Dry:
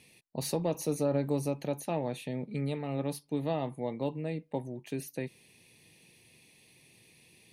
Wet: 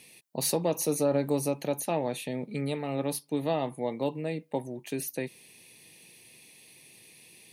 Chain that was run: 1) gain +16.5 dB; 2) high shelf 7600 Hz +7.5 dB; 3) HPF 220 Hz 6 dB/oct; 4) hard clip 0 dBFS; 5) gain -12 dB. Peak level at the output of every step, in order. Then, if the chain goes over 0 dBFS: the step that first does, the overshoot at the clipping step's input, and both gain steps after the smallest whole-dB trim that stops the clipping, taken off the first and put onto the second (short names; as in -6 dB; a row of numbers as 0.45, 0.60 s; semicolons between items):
-2.0, -2.0, -3.5, -3.5, -15.5 dBFS; no overload